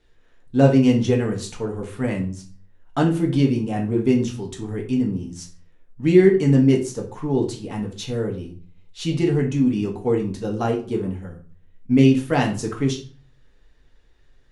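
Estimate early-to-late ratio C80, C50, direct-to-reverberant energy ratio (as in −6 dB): 15.5 dB, 9.5 dB, 0.0 dB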